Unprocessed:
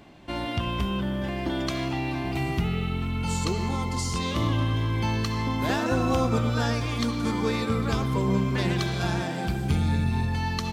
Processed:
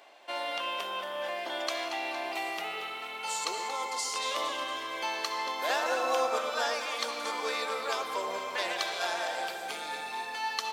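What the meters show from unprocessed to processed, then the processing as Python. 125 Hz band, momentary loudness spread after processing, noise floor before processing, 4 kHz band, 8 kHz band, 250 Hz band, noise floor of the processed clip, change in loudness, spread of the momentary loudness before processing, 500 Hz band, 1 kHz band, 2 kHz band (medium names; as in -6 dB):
under -40 dB, 7 LU, -31 dBFS, 0.0 dB, +0.5 dB, -21.5 dB, -40 dBFS, -5.5 dB, 5 LU, -3.0 dB, 0.0 dB, 0.0 dB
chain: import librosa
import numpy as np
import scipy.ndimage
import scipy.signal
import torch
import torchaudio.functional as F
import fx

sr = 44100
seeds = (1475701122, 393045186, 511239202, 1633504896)

y = scipy.signal.sosfilt(scipy.signal.cheby1(3, 1.0, 560.0, 'highpass', fs=sr, output='sos'), x)
y = fx.echo_alternate(y, sr, ms=115, hz=870.0, feedback_pct=75, wet_db=-8.5)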